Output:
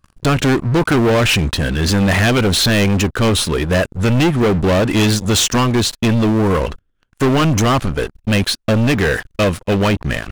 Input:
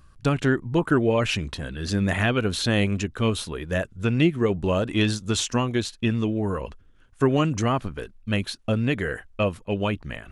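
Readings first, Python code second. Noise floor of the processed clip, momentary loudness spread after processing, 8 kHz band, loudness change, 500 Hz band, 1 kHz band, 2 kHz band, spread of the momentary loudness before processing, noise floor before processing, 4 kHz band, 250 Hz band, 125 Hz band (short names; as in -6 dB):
-66 dBFS, 5 LU, +13.0 dB, +9.0 dB, +8.0 dB, +10.0 dB, +9.5 dB, 7 LU, -54 dBFS, +11.5 dB, +8.5 dB, +9.5 dB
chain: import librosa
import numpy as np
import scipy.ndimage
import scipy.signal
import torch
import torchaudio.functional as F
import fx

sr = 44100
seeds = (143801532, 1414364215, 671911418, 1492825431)

y = fx.leveller(x, sr, passes=5)
y = F.gain(torch.from_numpy(y), -2.0).numpy()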